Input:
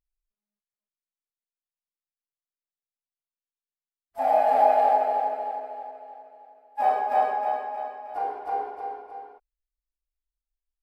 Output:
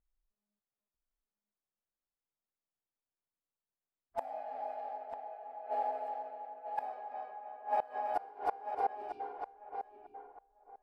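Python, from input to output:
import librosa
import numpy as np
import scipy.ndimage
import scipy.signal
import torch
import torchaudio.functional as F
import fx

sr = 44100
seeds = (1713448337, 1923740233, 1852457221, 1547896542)

p1 = fx.gate_flip(x, sr, shuts_db=-24.0, range_db=-25)
p2 = fx.spec_erase(p1, sr, start_s=8.9, length_s=0.3, low_hz=410.0, high_hz=2200.0)
p3 = p2 + fx.echo_feedback(p2, sr, ms=945, feedback_pct=20, wet_db=-8.5, dry=0)
p4 = fx.env_lowpass(p3, sr, base_hz=1200.0, full_db=-36.5)
y = p4 * 10.0 ** (3.0 / 20.0)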